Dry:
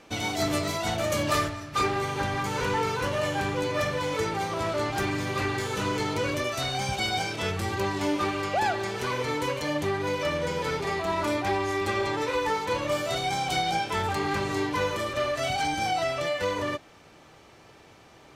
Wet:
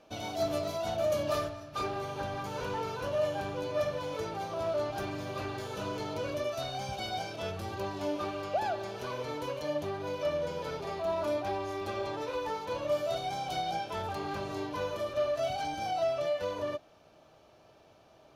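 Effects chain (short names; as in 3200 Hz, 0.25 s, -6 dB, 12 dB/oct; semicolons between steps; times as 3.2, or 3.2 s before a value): thirty-one-band EQ 630 Hz +11 dB, 2000 Hz -9 dB, 8000 Hz -10 dB; gain -9 dB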